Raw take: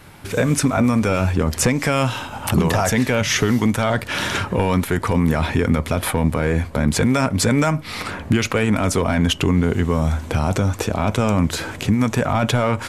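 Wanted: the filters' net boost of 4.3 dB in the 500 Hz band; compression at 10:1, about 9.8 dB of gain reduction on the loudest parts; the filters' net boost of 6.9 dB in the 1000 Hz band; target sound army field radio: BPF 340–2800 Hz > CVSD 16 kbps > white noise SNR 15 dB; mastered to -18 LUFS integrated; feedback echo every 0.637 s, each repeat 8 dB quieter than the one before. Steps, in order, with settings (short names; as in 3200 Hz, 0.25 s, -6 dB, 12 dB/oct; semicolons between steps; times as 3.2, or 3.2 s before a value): bell 500 Hz +4 dB; bell 1000 Hz +8 dB; compressor 10:1, threshold -20 dBFS; BPF 340–2800 Hz; feedback echo 0.637 s, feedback 40%, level -8 dB; CVSD 16 kbps; white noise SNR 15 dB; gain +10.5 dB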